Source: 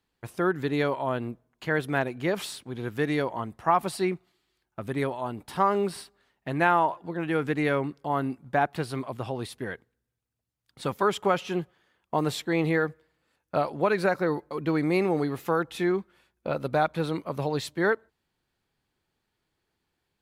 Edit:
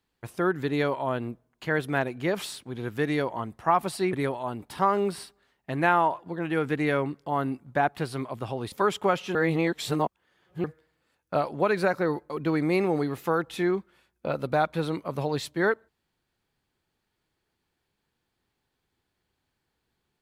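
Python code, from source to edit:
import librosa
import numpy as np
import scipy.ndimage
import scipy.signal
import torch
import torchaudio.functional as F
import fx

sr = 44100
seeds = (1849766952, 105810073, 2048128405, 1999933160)

y = fx.edit(x, sr, fx.cut(start_s=4.13, length_s=0.78),
    fx.cut(start_s=9.5, length_s=1.43),
    fx.reverse_span(start_s=11.56, length_s=1.29), tone=tone)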